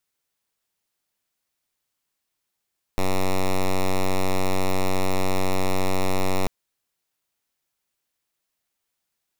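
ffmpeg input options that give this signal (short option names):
-f lavfi -i "aevalsrc='0.106*(2*lt(mod(94.1*t,1),0.06)-1)':d=3.49:s=44100"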